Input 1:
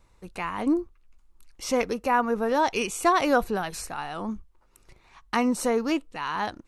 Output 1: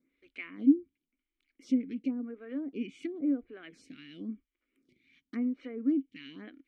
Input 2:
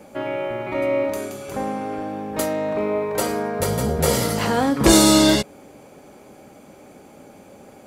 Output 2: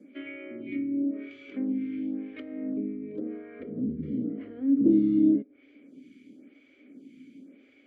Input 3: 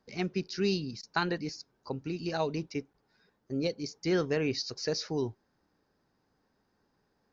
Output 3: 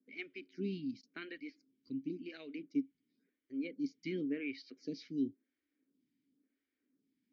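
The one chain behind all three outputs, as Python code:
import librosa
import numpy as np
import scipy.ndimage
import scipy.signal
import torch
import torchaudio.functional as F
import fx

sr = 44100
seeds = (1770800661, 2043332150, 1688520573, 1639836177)

y = fx.env_lowpass_down(x, sr, base_hz=500.0, full_db=-18.0)
y = fx.vowel_filter(y, sr, vowel='i')
y = fx.stagger_phaser(y, sr, hz=0.94)
y = y * 10.0 ** (6.5 / 20.0)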